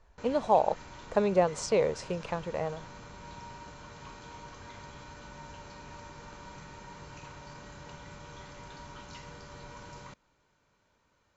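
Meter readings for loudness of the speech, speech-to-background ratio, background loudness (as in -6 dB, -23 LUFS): -29.5 LUFS, 18.0 dB, -47.5 LUFS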